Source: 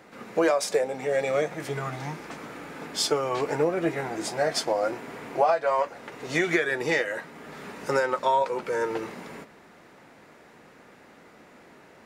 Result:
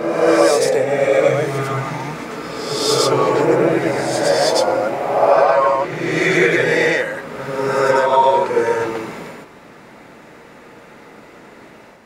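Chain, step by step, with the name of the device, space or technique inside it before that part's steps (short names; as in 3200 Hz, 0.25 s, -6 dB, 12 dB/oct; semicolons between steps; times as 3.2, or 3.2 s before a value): reverse reverb (reverse; reverb RT60 1.5 s, pre-delay 86 ms, DRR -4 dB; reverse); gain +5 dB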